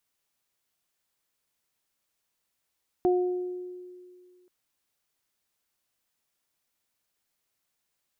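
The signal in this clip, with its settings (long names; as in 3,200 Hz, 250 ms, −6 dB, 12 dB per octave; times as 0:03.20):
harmonic partials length 1.43 s, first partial 361 Hz, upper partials −7.5 dB, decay 2.13 s, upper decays 0.88 s, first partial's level −19 dB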